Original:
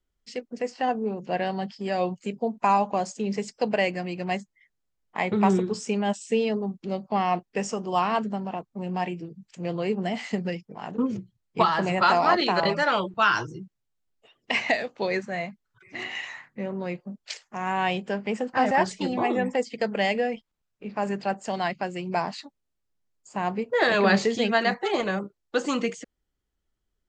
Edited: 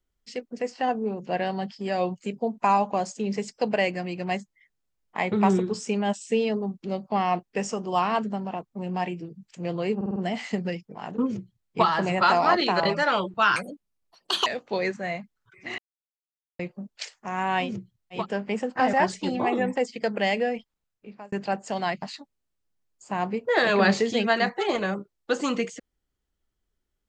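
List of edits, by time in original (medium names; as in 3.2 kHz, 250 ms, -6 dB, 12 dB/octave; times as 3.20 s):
9.96 s: stutter 0.05 s, 5 plays
11.08–11.59 s: copy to 17.96 s, crossfade 0.16 s
13.36–14.75 s: speed 154%
16.07–16.88 s: mute
20.29–21.10 s: fade out equal-power
21.80–22.27 s: delete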